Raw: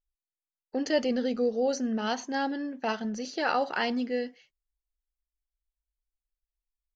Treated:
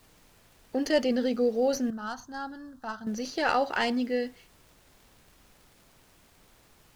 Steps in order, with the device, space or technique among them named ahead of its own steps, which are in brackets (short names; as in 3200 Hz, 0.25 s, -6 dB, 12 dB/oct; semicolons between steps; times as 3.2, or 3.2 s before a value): record under a worn stylus (tracing distortion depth 0.03 ms; crackle; pink noise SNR 29 dB); 1.9–3.07 EQ curve 100 Hz 0 dB, 460 Hz -17 dB, 1400 Hz 0 dB, 2200 Hz -25 dB, 3800 Hz -9 dB; gain +1.5 dB